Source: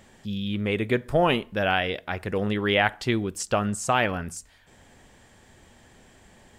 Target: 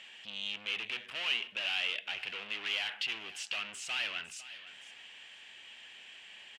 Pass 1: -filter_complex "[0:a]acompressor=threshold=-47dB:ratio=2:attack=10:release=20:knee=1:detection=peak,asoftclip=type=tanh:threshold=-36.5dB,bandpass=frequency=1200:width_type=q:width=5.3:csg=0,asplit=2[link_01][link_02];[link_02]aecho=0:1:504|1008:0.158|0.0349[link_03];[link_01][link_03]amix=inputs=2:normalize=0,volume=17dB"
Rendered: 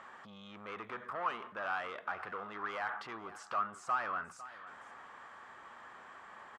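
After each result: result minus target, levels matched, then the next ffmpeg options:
1,000 Hz band +16.5 dB; downward compressor: peak gain reduction +14.5 dB
-filter_complex "[0:a]acompressor=threshold=-47dB:ratio=2:attack=10:release=20:knee=1:detection=peak,asoftclip=type=tanh:threshold=-36.5dB,bandpass=frequency=2800:width_type=q:width=5.3:csg=0,asplit=2[link_01][link_02];[link_02]aecho=0:1:504|1008:0.158|0.0349[link_03];[link_01][link_03]amix=inputs=2:normalize=0,volume=17dB"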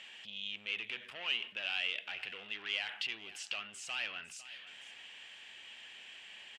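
downward compressor: peak gain reduction +14.5 dB
-filter_complex "[0:a]asoftclip=type=tanh:threshold=-36.5dB,bandpass=frequency=2800:width_type=q:width=5.3:csg=0,asplit=2[link_01][link_02];[link_02]aecho=0:1:504|1008:0.158|0.0349[link_03];[link_01][link_03]amix=inputs=2:normalize=0,volume=17dB"

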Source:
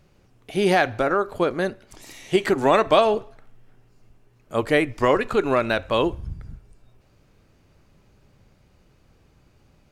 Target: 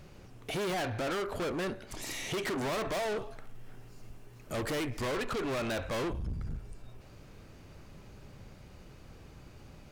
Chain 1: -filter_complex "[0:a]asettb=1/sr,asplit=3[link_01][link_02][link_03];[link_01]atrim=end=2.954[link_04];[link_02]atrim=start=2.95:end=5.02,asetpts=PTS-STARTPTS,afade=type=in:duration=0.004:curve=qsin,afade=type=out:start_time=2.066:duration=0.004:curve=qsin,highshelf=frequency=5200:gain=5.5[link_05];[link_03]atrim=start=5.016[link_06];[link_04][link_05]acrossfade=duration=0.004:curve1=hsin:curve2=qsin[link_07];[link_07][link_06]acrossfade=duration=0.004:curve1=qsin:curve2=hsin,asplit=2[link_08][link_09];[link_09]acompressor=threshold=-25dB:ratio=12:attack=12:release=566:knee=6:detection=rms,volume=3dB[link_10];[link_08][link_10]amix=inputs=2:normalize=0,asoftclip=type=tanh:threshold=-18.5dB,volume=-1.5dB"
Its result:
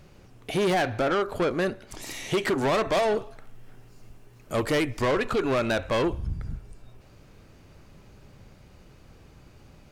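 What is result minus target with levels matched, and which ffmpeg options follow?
soft clipping: distortion −6 dB
-filter_complex "[0:a]asettb=1/sr,asplit=3[link_01][link_02][link_03];[link_01]atrim=end=2.954[link_04];[link_02]atrim=start=2.95:end=5.02,asetpts=PTS-STARTPTS,afade=type=in:duration=0.004:curve=qsin,afade=type=out:start_time=2.066:duration=0.004:curve=qsin,highshelf=frequency=5200:gain=5.5[link_05];[link_03]atrim=start=5.016[link_06];[link_04][link_05]acrossfade=duration=0.004:curve1=hsin:curve2=qsin[link_07];[link_07][link_06]acrossfade=duration=0.004:curve1=qsin:curve2=hsin,asplit=2[link_08][link_09];[link_09]acompressor=threshold=-25dB:ratio=12:attack=12:release=566:knee=6:detection=rms,volume=3dB[link_10];[link_08][link_10]amix=inputs=2:normalize=0,asoftclip=type=tanh:threshold=-30dB,volume=-1.5dB"

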